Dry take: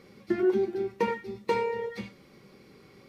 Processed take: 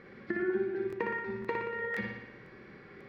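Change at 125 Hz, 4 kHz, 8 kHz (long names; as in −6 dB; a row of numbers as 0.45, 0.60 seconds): −2.5 dB, −9.0 dB, can't be measured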